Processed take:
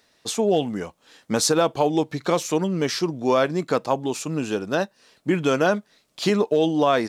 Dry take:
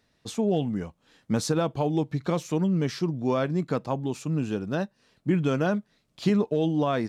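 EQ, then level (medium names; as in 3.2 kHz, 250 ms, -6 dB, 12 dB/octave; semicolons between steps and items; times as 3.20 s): tone controls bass -13 dB, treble +4 dB; +8.0 dB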